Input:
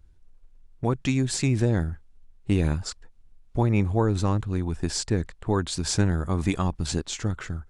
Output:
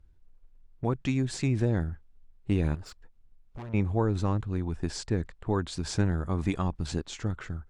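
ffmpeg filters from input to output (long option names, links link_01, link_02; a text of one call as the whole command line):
ffmpeg -i in.wav -filter_complex "[0:a]asettb=1/sr,asplit=3[link_01][link_02][link_03];[link_01]atrim=end=2.754[link_04];[link_02]atrim=start=2.75:end=3.74,asetpts=PTS-STARTPTS,afade=type=in:duration=0.004:curve=qsin,afade=type=out:start_time=0.986:duration=0.004:curve=qsin,aeval=exprs='(tanh(50.1*val(0)+0.35)-tanh(0.35))/50.1':channel_layout=same[link_05];[link_03]atrim=start=3.736[link_06];[link_04][link_05]acrossfade=duration=0.004:curve1=hsin:curve2=qsin[link_07];[link_07][link_06]acrossfade=duration=0.004:curve1=qsin:curve2=hsin,aemphasis=mode=reproduction:type=cd,volume=-4dB" out.wav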